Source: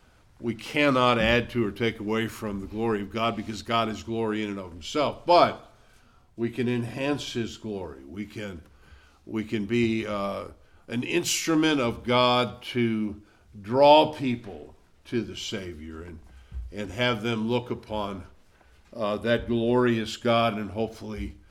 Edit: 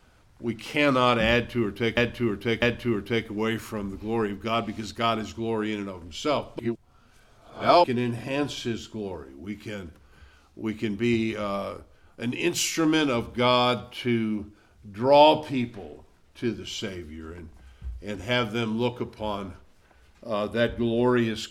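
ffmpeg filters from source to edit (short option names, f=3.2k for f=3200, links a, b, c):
-filter_complex "[0:a]asplit=5[a][b][c][d][e];[a]atrim=end=1.972[f];[b]atrim=start=1.318:end=1.972[g];[c]atrim=start=1.318:end=5.292[h];[d]atrim=start=5.288:end=6.542,asetpts=PTS-STARTPTS,areverse[i];[e]atrim=start=6.538[j];[f][g]acrossfade=d=0.004:c1=hsin:c2=hsin[k];[k][h]acrossfade=d=0.004:c1=hsin:c2=hsin[l];[l][i]acrossfade=d=0.004:c1=hsin:c2=hsin[m];[m][j]acrossfade=d=0.004:c1=hsin:c2=hsin"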